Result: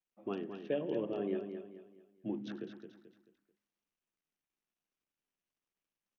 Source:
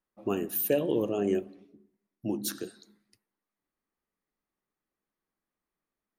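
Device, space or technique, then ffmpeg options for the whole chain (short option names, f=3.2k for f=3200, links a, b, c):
Bluetooth headset: -filter_complex "[0:a]asettb=1/sr,asplit=3[a][b][c];[a]atrim=end=2.264[d];[b]atrim=start=2.26:end=2.68,asetpts=PTS-STARTPTS,afade=t=in:d=0.004:c=qsin,afade=t=out:st=0.416:d=0.004:c=qsin,equalizer=f=92:w=0.32:g=4[e];[c]atrim=start=2.676[f];[d][e]acrossfade=d=0.004:c1=hsin:c2=qsin[g];[g][f]acrossfade=d=0.004:c1=qsin:c2=hsin,highpass=f=130:w=0.5412,highpass=f=130:w=1.3066,aecho=1:1:218|436|654|872:0.398|0.147|0.0545|0.0202,aresample=8000,aresample=44100,volume=-8.5dB" -ar 48000 -c:a sbc -b:a 64k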